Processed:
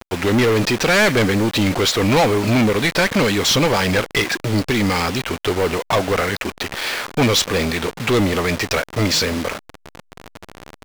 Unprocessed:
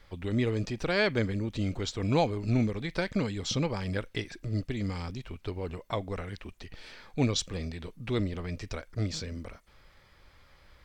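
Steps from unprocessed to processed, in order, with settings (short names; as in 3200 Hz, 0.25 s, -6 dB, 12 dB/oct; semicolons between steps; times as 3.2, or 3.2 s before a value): level-crossing sampler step -47.5 dBFS; overdrive pedal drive 29 dB, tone 7300 Hz, clips at -14 dBFS; gain +6 dB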